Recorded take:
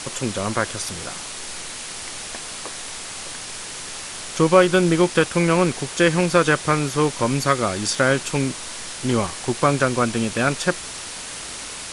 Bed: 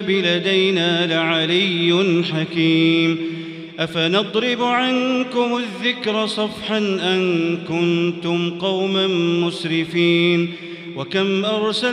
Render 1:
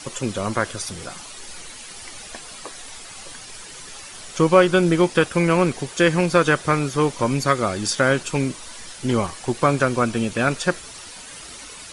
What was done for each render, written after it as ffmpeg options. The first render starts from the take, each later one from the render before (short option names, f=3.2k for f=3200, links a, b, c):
-af "afftdn=nr=10:nf=-34"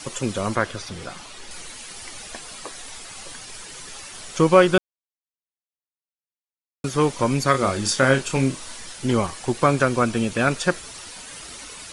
-filter_complex "[0:a]asettb=1/sr,asplit=3[a][b][c];[a]atrim=end=0.554[d];[b]atrim=start=0.55:end=1.51,asetpts=PTS-STARTPTS,afade=t=in:d=0.004:c=qsin,afade=t=out:st=0.956:d=0.004:c=qsin,acrossover=split=5000[e][f];[f]acompressor=threshold=-46dB:ratio=4:attack=1:release=60[g];[e][g]amix=inputs=2:normalize=0[h];[c]atrim=start=1.506[i];[d][h]acrossfade=d=0.004:c1=hsin:c2=qsin[j];[j][i]acrossfade=d=0.004:c1=qsin:c2=hsin,asettb=1/sr,asplit=3[k][l][m];[k]atrim=end=7.514[n];[l]atrim=start=7.51:end=8.77,asetpts=PTS-STARTPTS,afade=t=in:d=0.004:c=qsin,afade=t=out:st=1.256:d=0.004:c=qsin,asplit=2[o][p];[p]adelay=30,volume=-7dB[q];[o][q]amix=inputs=2:normalize=0,atrim=end_sample=55566[r];[m]atrim=start=8.766[s];[n][r]acrossfade=d=0.004:c1=hsin:c2=qsin[t];[t][s]acrossfade=d=0.004:c1=qsin:c2=hsin,asplit=3[u][v][w];[u]atrim=end=4.78,asetpts=PTS-STARTPTS,afade=t=out:st=4.776:d=0.004:c=hsin[x];[v]atrim=start=4.78:end=6.84,asetpts=PTS-STARTPTS,volume=0[y];[w]atrim=start=6.84,asetpts=PTS-STARTPTS,afade=t=in:d=0.004:c=hsin[z];[x][y][z]concat=n=3:v=0:a=1"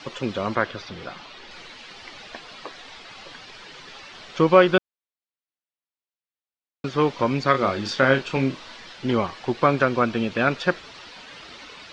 -af "lowpass=f=4.4k:w=0.5412,lowpass=f=4.4k:w=1.3066,lowshelf=f=96:g=-11.5"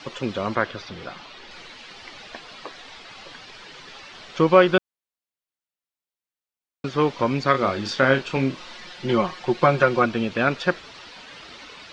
-filter_complex "[0:a]asettb=1/sr,asplit=3[a][b][c];[a]atrim=end=8.574[d];[b]atrim=start=8.57:end=10.06,asetpts=PTS-STARTPTS,afade=t=in:d=0.004:c=qsin,afade=t=out:st=1.486:d=0.004:c=qsin,aecho=1:1:5.6:0.67,atrim=end_sample=65709[e];[c]atrim=start=10.056[f];[d][e]acrossfade=d=0.004:c1=hsin:c2=qsin[g];[g][f]acrossfade=d=0.004:c1=qsin:c2=hsin"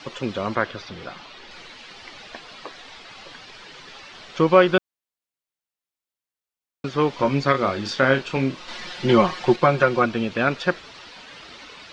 -filter_complex "[0:a]asettb=1/sr,asplit=3[a][b][c];[a]atrim=end=7.114[d];[b]atrim=start=7.11:end=7.52,asetpts=PTS-STARTPTS,afade=t=in:d=0.004:c=qsin,afade=t=out:st=0.406:d=0.004:c=qsin,asplit=2[e][f];[f]adelay=14,volume=-5.5dB[g];[e][g]amix=inputs=2:normalize=0,atrim=end_sample=18081[h];[c]atrim=start=7.516[i];[d][h]acrossfade=d=0.004:c1=hsin:c2=qsin[j];[j][i]acrossfade=d=0.004:c1=qsin:c2=hsin,asettb=1/sr,asplit=3[k][l][m];[k]atrim=end=8.684[n];[l]atrim=start=8.68:end=9.56,asetpts=PTS-STARTPTS,afade=t=in:d=0.004:c=qsin,afade=t=out:st=0.876:d=0.004:c=qsin,acontrast=36[o];[m]atrim=start=9.556[p];[n][o]acrossfade=d=0.004:c1=hsin:c2=qsin[q];[q][p]acrossfade=d=0.004:c1=qsin:c2=hsin"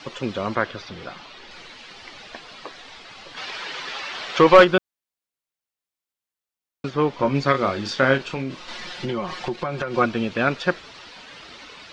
-filter_complex "[0:a]asplit=3[a][b][c];[a]afade=t=out:st=3.36:d=0.02[d];[b]asplit=2[e][f];[f]highpass=f=720:p=1,volume=18dB,asoftclip=type=tanh:threshold=-1dB[g];[e][g]amix=inputs=2:normalize=0,lowpass=f=3.7k:p=1,volume=-6dB,afade=t=in:st=3.36:d=0.02,afade=t=out:st=4.63:d=0.02[h];[c]afade=t=in:st=4.63:d=0.02[i];[d][h][i]amix=inputs=3:normalize=0,asettb=1/sr,asplit=3[j][k][l];[j]atrim=end=6.904[m];[k]atrim=start=6.9:end=7.35,asetpts=PTS-STARTPTS,afade=t=in:d=0.004:c=qsin,afade=t=out:st=0.446:d=0.004:c=qsin,highshelf=f=2.8k:g=-7[n];[l]atrim=start=7.346[o];[m][n]acrossfade=d=0.004:c1=hsin:c2=qsin[p];[p][o]acrossfade=d=0.004:c1=qsin:c2=hsin,asettb=1/sr,asplit=3[q][r][s];[q]atrim=end=8.174[t];[r]atrim=start=8.17:end=9.94,asetpts=PTS-STARTPTS,afade=t=in:d=0.004:c=qsin,afade=t=out:st=1.766:d=0.004:c=qsin,acompressor=threshold=-23dB:ratio=6:attack=3.2:release=140:knee=1:detection=peak[u];[s]atrim=start=9.936[v];[t][u]acrossfade=d=0.004:c1=hsin:c2=qsin[w];[w][v]acrossfade=d=0.004:c1=qsin:c2=hsin"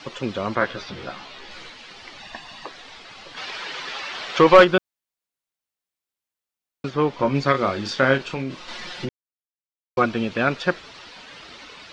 -filter_complex "[0:a]asettb=1/sr,asplit=3[a][b][c];[a]atrim=end=0.604[d];[b]atrim=start=0.6:end=1.7,asetpts=PTS-STARTPTS,afade=t=in:d=0.004:c=qsin,afade=t=out:st=1.096:d=0.004:c=qsin,asplit=2[e][f];[f]adelay=15,volume=-2dB[g];[e][g]amix=inputs=2:normalize=0,atrim=end_sample=48510[h];[c]atrim=start=1.696[i];[d][h]acrossfade=d=0.004:c1=hsin:c2=qsin[j];[j][i]acrossfade=d=0.004:c1=qsin:c2=hsin,asettb=1/sr,asplit=3[k][l][m];[k]atrim=end=2.204[n];[l]atrim=start=2.2:end=2.66,asetpts=PTS-STARTPTS,afade=t=in:d=0.004:c=qsin,afade=t=out:st=0.456:d=0.004:c=qsin,aecho=1:1:1.1:0.64,atrim=end_sample=20286[o];[m]atrim=start=2.656[p];[n][o]acrossfade=d=0.004:c1=hsin:c2=qsin[q];[q][p]acrossfade=d=0.004:c1=qsin:c2=hsin,asplit=3[r][s][t];[r]atrim=end=9.09,asetpts=PTS-STARTPTS,afade=t=out:st=9.086:d=0.004:c=hsin[u];[s]atrim=start=9.09:end=9.97,asetpts=PTS-STARTPTS,volume=0[v];[t]atrim=start=9.97,asetpts=PTS-STARTPTS,afade=t=in:d=0.004:c=hsin[w];[u][v][w]concat=n=3:v=0:a=1"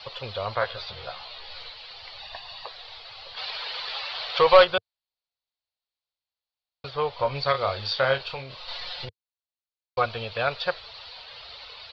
-af "firequalizer=gain_entry='entry(100,0);entry(170,-17);entry(310,-25);entry(460,-4);entry(700,-1);entry(1700,-7);entry(4400,6);entry(6400,-21)':delay=0.05:min_phase=1"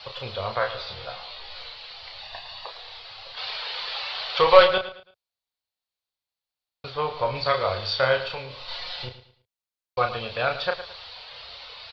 -filter_complex "[0:a]asplit=2[a][b];[b]adelay=32,volume=-6dB[c];[a][c]amix=inputs=2:normalize=0,aecho=1:1:110|220|330:0.224|0.0694|0.0215"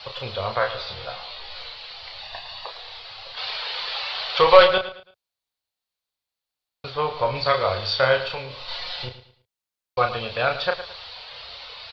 -af "volume=2.5dB,alimiter=limit=-1dB:level=0:latency=1"